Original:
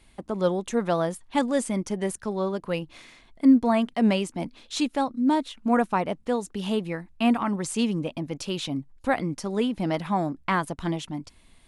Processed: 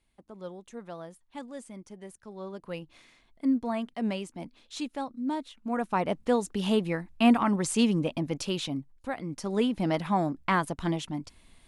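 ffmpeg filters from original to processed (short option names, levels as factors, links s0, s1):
-af "volume=3.76,afade=t=in:st=2.22:d=0.5:silence=0.398107,afade=t=in:st=5.77:d=0.4:silence=0.316228,afade=t=out:st=8.32:d=0.84:silence=0.237137,afade=t=in:st=9.16:d=0.38:silence=0.298538"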